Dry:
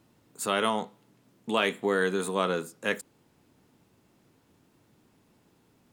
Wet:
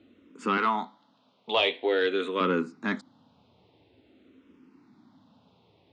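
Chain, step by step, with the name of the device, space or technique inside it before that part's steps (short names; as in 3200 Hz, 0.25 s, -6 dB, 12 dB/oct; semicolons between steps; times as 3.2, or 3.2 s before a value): 0.57–2.41 weighting filter A; barber-pole phaser into a guitar amplifier (endless phaser -0.48 Hz; soft clip -20 dBFS, distortion -18 dB; speaker cabinet 78–4200 Hz, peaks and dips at 140 Hz -8 dB, 260 Hz +8 dB, 1700 Hz -6 dB, 3700 Hz +4 dB); gain +6.5 dB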